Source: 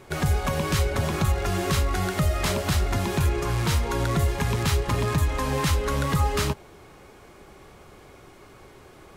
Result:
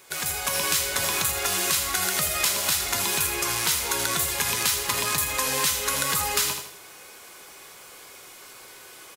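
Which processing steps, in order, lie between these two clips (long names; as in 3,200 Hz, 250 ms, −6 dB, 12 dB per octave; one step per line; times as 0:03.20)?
repeating echo 80 ms, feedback 35%, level −9.5 dB
automatic gain control gain up to 6 dB
spectral tilt +4.5 dB per octave
tuned comb filter 500 Hz, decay 0.17 s, harmonics all, mix 70%
downward compressor, threshold −24 dBFS, peak gain reduction 7 dB
level +4 dB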